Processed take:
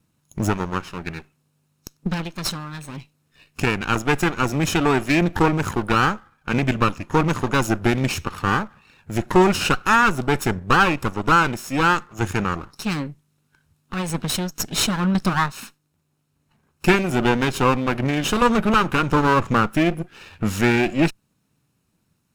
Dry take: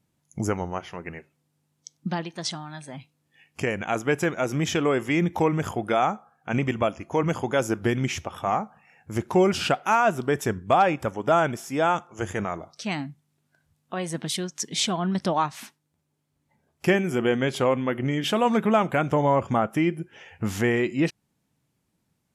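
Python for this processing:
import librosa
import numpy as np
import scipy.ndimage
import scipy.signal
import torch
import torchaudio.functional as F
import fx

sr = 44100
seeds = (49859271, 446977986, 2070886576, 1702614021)

y = fx.lower_of_two(x, sr, delay_ms=0.75)
y = y * 10.0 ** (6.0 / 20.0)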